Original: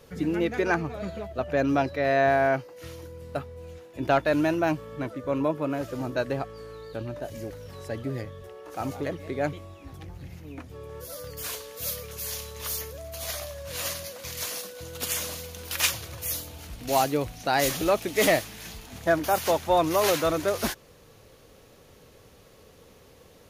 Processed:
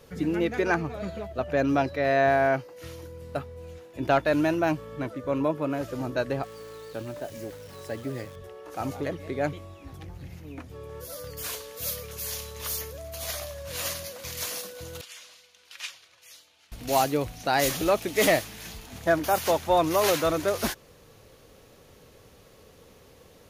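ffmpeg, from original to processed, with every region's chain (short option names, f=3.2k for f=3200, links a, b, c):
-filter_complex "[0:a]asettb=1/sr,asplit=3[a][b][c];[a]atrim=end=6.434[d];[b]atrim=start=6.43:end=8.36,asetpts=PTS-STARTPTS,afade=t=in:d=0.004:c=qsin,afade=t=out:st=1.926:d=0.004:c=qsin,acrusher=bits=9:dc=4:mix=0:aa=0.000001,highpass=f=150:p=1[e];[c]atrim=start=8.356[f];[d][e]acrossfade=d=0.004:c1=hsin:c2=qsin[g];[g][f]acrossfade=d=0.004:c1=qsin:c2=hsin,asettb=1/sr,asplit=3[h][i][j];[h]atrim=end=15.014[k];[i]atrim=start=15.01:end=16.72,asetpts=PTS-STARTPTS,afade=t=in:d=0.004:c=qsin,afade=t=out:st=1.706:d=0.004:c=qsin,lowpass=3k,aderivative[l];[j]atrim=start=16.716[m];[k][l]acrossfade=d=0.004:c1=hsin:c2=qsin[n];[n][m]acrossfade=d=0.004:c1=qsin:c2=hsin"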